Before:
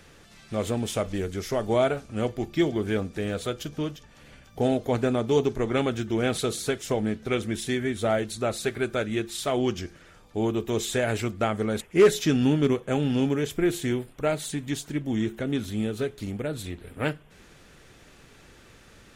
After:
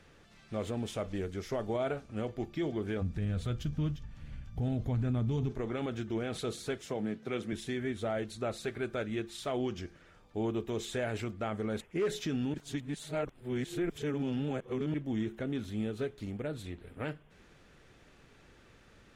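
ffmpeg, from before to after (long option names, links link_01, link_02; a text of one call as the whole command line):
ffmpeg -i in.wav -filter_complex "[0:a]asplit=3[link_01][link_02][link_03];[link_01]afade=type=out:start_time=3.01:duration=0.02[link_04];[link_02]asubboost=boost=10:cutoff=150,afade=type=in:start_time=3.01:duration=0.02,afade=type=out:start_time=5.49:duration=0.02[link_05];[link_03]afade=type=in:start_time=5.49:duration=0.02[link_06];[link_04][link_05][link_06]amix=inputs=3:normalize=0,asettb=1/sr,asplit=3[link_07][link_08][link_09];[link_07]atrim=end=6.864[link_10];[link_08]atrim=start=6.86:end=7.53,asetpts=PTS-STARTPTS,afade=type=in:duration=0.004:curve=qsin,afade=type=out:start_time=0.666:duration=0.004:curve=qsin,highpass=frequency=120:width=0.5412,highpass=frequency=120:width=1.3066[link_11];[link_09]atrim=start=7.526[link_12];[link_10][link_11]acrossfade=duration=0.004:curve1=hsin:curve2=qsin[link_13];[link_13][link_12]acrossfade=duration=0.004:curve1=qsin:curve2=hsin,asplit=3[link_14][link_15][link_16];[link_14]atrim=end=12.542[link_17];[link_15]atrim=start=12.538:end=14.942,asetpts=PTS-STARTPTS,areverse[link_18];[link_16]atrim=start=14.938[link_19];[link_17][link_18]acrossfade=duration=0.004:curve1=hsin:curve2=hsin[link_20];[link_20][link_19]acrossfade=duration=0.004:curve1=hsin:curve2=hsin,lowpass=frequency=3800:poles=1,alimiter=limit=-18.5dB:level=0:latency=1:release=29,volume=-6.5dB" out.wav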